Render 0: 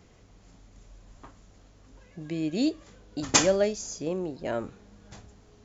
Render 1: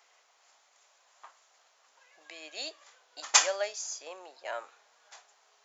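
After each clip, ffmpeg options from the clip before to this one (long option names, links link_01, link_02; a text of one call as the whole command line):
ffmpeg -i in.wav -af "highpass=frequency=730:width=0.5412,highpass=frequency=730:width=1.3066" out.wav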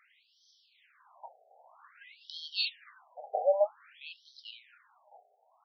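ffmpeg -i in.wav -af "dynaudnorm=framelen=210:gausssize=13:maxgain=13dB,afftfilt=real='re*between(b*sr/1024,570*pow(4400/570,0.5+0.5*sin(2*PI*0.52*pts/sr))/1.41,570*pow(4400/570,0.5+0.5*sin(2*PI*0.52*pts/sr))*1.41)':imag='im*between(b*sr/1024,570*pow(4400/570,0.5+0.5*sin(2*PI*0.52*pts/sr))/1.41,570*pow(4400/570,0.5+0.5*sin(2*PI*0.52*pts/sr))*1.41)':win_size=1024:overlap=0.75,volume=3.5dB" out.wav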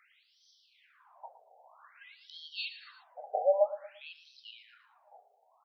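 ffmpeg -i in.wav -filter_complex "[0:a]aecho=1:1:115|230|345:0.188|0.0659|0.0231,acrossover=split=3400[link_01][link_02];[link_02]acompressor=threshold=-57dB:ratio=4:attack=1:release=60[link_03];[link_01][link_03]amix=inputs=2:normalize=0" out.wav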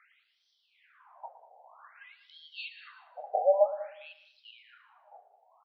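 ffmpeg -i in.wav -af "highpass=530,lowpass=2100,aecho=1:1:193|386:0.158|0.0285,volume=4.5dB" out.wav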